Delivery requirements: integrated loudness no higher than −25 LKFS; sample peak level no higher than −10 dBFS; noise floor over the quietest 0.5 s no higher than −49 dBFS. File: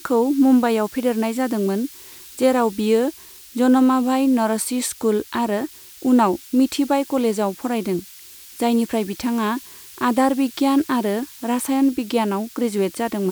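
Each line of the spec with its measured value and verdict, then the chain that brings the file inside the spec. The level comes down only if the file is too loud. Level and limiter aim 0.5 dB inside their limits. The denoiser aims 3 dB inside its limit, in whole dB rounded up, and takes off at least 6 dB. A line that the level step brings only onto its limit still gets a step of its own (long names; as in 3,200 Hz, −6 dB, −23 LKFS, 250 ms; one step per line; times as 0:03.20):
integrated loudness −20.5 LKFS: out of spec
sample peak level −5.5 dBFS: out of spec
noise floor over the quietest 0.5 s −42 dBFS: out of spec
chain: broadband denoise 6 dB, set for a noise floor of −42 dBFS
level −5 dB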